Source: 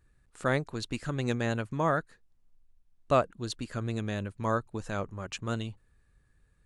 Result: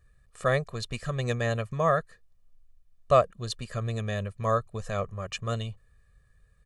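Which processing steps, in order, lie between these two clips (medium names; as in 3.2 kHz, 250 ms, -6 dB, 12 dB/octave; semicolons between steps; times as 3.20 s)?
comb 1.7 ms, depth 84%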